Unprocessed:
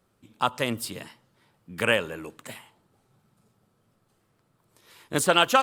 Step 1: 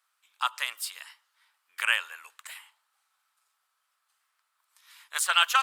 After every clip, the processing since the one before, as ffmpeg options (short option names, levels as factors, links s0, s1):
-af "highpass=f=1100:w=0.5412,highpass=f=1100:w=1.3066"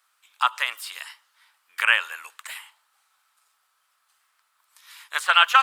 -filter_complex "[0:a]acrossover=split=3300[s0][s1];[s1]acompressor=threshold=0.00708:ratio=4:attack=1:release=60[s2];[s0][s2]amix=inputs=2:normalize=0,volume=2.37"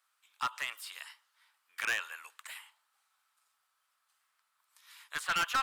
-af "asoftclip=type=hard:threshold=0.141,volume=0.355"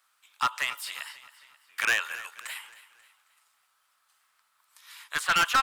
-af "aecho=1:1:269|538|807|1076:0.15|0.0643|0.0277|0.0119,volume=2.37"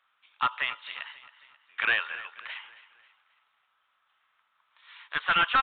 -af "aresample=8000,aresample=44100"